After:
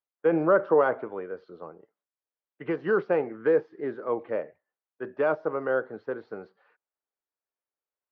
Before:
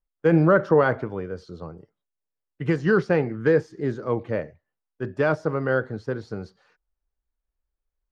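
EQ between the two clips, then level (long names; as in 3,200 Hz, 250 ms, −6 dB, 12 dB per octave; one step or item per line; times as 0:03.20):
dynamic equaliser 1,800 Hz, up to −6 dB, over −40 dBFS, Q 2.2
band-pass filter 400–2,600 Hz
high-frequency loss of the air 190 metres
0.0 dB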